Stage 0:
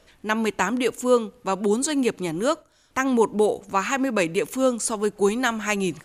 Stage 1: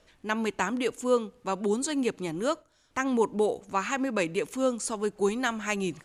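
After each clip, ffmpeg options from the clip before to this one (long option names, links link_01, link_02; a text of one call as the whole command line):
ffmpeg -i in.wav -af "lowpass=10000,volume=-5.5dB" out.wav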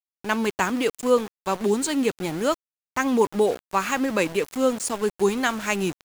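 ffmpeg -i in.wav -af "aeval=exprs='val(0)*gte(abs(val(0)),0.015)':channel_layout=same,volume=5dB" out.wav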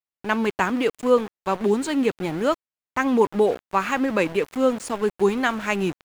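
ffmpeg -i in.wav -af "bass=frequency=250:gain=0,treble=frequency=4000:gain=-10,volume=1.5dB" out.wav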